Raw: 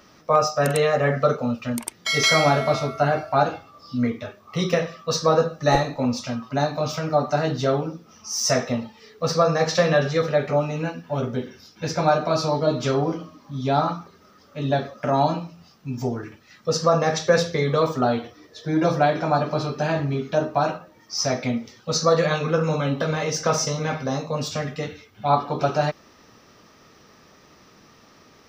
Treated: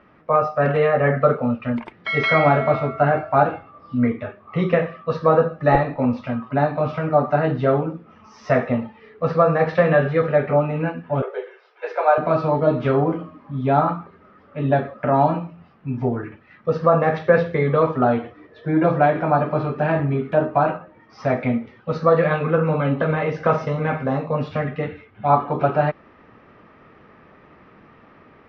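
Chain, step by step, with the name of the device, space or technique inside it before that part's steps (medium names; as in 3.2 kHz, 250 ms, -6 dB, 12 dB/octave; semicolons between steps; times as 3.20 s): 11.22–12.18 s: steep high-pass 390 Hz 72 dB/octave; action camera in a waterproof case (low-pass 2.4 kHz 24 dB/octave; level rider gain up to 4 dB; AAC 64 kbps 44.1 kHz)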